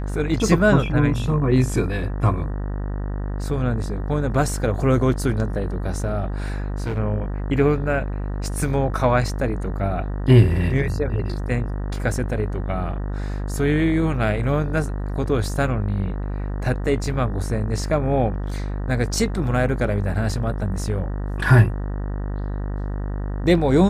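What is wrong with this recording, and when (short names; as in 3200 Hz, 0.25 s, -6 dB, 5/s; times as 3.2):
buzz 50 Hz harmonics 38 -26 dBFS
6.38–6.99 clipped -21.5 dBFS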